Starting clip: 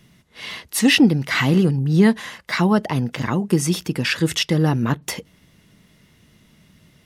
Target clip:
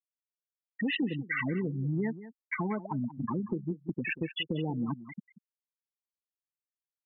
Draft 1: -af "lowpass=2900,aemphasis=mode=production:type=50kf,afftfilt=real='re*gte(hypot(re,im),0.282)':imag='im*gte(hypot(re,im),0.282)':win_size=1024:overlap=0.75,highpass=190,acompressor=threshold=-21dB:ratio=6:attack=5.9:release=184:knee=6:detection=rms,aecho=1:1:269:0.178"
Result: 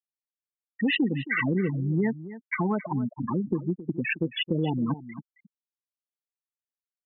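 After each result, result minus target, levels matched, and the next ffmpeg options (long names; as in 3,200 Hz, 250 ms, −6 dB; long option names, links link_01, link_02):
echo 83 ms late; downward compressor: peak gain reduction −6 dB
-af "lowpass=2900,aemphasis=mode=production:type=50kf,afftfilt=real='re*gte(hypot(re,im),0.282)':imag='im*gte(hypot(re,im),0.282)':win_size=1024:overlap=0.75,highpass=190,acompressor=threshold=-21dB:ratio=6:attack=5.9:release=184:knee=6:detection=rms,aecho=1:1:186:0.178"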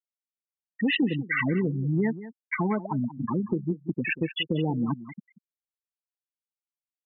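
downward compressor: peak gain reduction −6 dB
-af "lowpass=2900,aemphasis=mode=production:type=50kf,afftfilt=real='re*gte(hypot(re,im),0.282)':imag='im*gte(hypot(re,im),0.282)':win_size=1024:overlap=0.75,highpass=190,acompressor=threshold=-28.5dB:ratio=6:attack=5.9:release=184:knee=6:detection=rms,aecho=1:1:186:0.178"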